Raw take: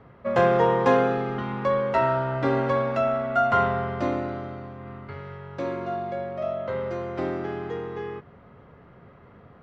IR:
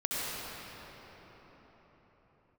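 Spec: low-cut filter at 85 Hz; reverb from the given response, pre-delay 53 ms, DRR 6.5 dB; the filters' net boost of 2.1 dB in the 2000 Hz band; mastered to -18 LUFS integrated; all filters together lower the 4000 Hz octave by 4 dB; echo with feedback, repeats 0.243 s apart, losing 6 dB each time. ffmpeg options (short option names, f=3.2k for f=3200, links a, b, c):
-filter_complex "[0:a]highpass=85,equalizer=f=2k:t=o:g=4.5,equalizer=f=4k:t=o:g=-8,aecho=1:1:243|486|729|972|1215|1458:0.501|0.251|0.125|0.0626|0.0313|0.0157,asplit=2[a][b];[1:a]atrim=start_sample=2205,adelay=53[c];[b][c]afir=irnorm=-1:irlink=0,volume=-15dB[d];[a][d]amix=inputs=2:normalize=0,volume=5.5dB"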